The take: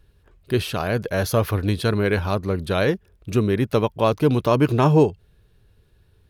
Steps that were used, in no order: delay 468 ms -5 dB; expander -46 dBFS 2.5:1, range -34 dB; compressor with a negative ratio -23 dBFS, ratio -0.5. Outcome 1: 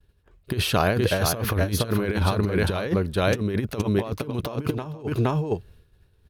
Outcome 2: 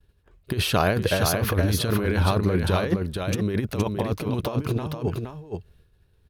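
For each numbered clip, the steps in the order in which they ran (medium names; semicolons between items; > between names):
delay > expander > compressor with a negative ratio; expander > compressor with a negative ratio > delay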